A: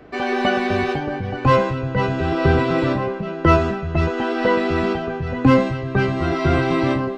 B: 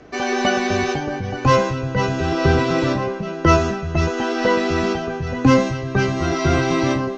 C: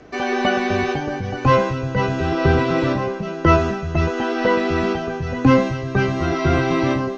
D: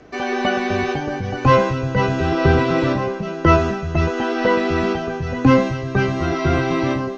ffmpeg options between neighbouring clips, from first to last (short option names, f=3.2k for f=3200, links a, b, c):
-af "lowpass=f=6.2k:t=q:w=6.5"
-filter_complex "[0:a]acrossover=split=4000[a][b];[b]acompressor=threshold=-47dB:ratio=4:attack=1:release=60[c];[a][c]amix=inputs=2:normalize=0"
-af "dynaudnorm=f=210:g=11:m=11.5dB,volume=-1dB"